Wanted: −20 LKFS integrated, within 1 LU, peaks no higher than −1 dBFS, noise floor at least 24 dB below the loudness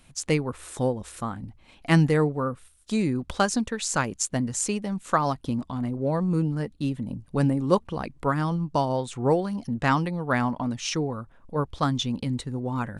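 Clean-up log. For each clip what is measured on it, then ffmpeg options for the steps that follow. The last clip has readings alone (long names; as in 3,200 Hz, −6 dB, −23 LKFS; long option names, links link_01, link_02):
integrated loudness −26.5 LKFS; sample peak −6.0 dBFS; target loudness −20.0 LKFS
→ -af "volume=6.5dB,alimiter=limit=-1dB:level=0:latency=1"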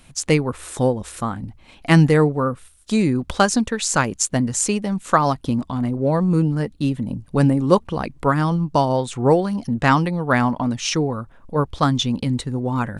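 integrated loudness −20.0 LKFS; sample peak −1.0 dBFS; background noise floor −50 dBFS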